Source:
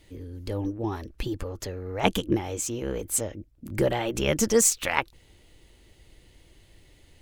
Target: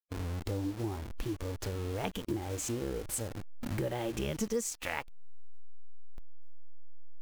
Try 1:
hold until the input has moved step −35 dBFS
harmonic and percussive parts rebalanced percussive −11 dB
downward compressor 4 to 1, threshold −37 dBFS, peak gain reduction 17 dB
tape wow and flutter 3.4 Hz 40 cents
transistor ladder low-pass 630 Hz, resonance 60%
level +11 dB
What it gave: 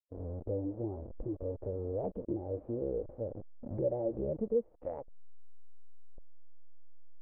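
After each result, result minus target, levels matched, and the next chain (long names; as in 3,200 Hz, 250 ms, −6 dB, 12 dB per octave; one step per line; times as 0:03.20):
downward compressor: peak gain reduction −6.5 dB; 500 Hz band +4.5 dB
hold until the input has moved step −35 dBFS
harmonic and percussive parts rebalanced percussive −11 dB
downward compressor 4 to 1, threshold −45.5 dBFS, peak gain reduction 23.5 dB
tape wow and flutter 3.4 Hz 40 cents
transistor ladder low-pass 630 Hz, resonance 60%
level +11 dB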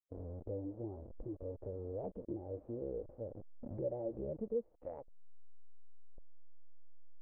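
500 Hz band +4.5 dB
hold until the input has moved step −35 dBFS
harmonic and percussive parts rebalanced percussive −11 dB
downward compressor 4 to 1, threshold −45.5 dBFS, peak gain reduction 23.5 dB
tape wow and flutter 3.4 Hz 40 cents
level +11 dB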